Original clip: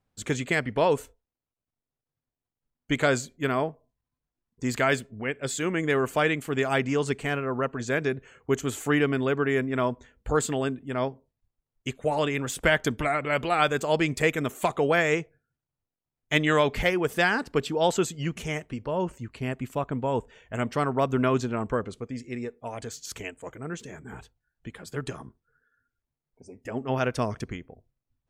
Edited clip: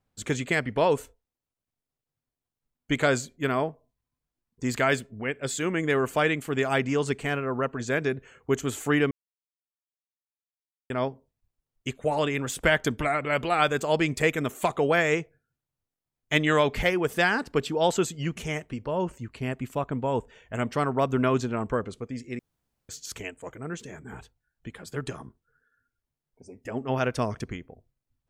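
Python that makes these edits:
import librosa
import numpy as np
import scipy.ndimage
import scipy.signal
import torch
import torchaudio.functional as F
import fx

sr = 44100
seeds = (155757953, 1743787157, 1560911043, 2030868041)

y = fx.edit(x, sr, fx.silence(start_s=9.11, length_s=1.79),
    fx.room_tone_fill(start_s=22.39, length_s=0.5), tone=tone)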